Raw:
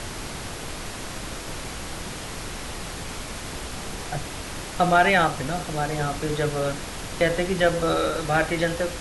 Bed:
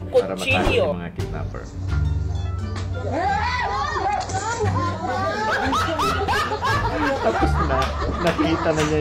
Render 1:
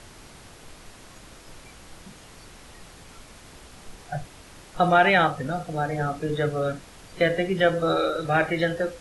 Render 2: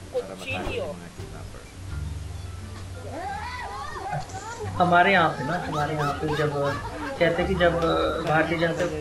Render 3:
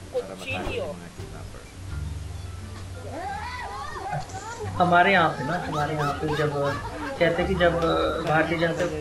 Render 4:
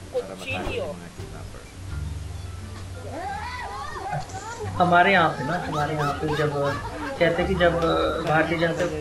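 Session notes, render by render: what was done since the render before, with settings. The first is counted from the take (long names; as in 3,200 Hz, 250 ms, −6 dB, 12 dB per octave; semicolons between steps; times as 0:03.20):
noise reduction from a noise print 13 dB
mix in bed −11 dB
no processing that can be heard
level +1 dB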